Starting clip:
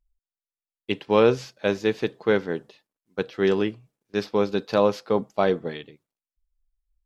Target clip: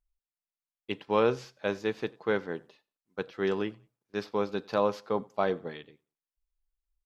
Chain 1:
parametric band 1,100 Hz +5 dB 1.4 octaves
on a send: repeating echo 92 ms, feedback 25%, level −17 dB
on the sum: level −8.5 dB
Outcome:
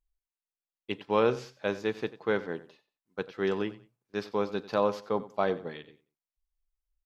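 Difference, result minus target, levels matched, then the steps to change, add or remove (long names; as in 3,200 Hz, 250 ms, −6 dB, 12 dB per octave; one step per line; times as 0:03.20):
echo-to-direct +8.5 dB
change: repeating echo 92 ms, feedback 25%, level −25.5 dB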